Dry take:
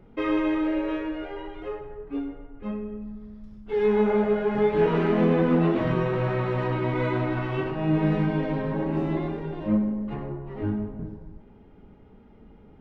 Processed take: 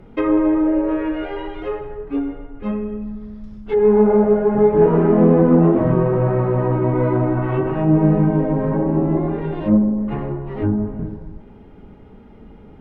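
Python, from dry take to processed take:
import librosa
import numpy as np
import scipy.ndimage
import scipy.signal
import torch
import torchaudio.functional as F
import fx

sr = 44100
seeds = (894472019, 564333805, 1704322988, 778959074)

y = fx.env_lowpass_down(x, sr, base_hz=960.0, full_db=-23.0)
y = y * 10.0 ** (8.5 / 20.0)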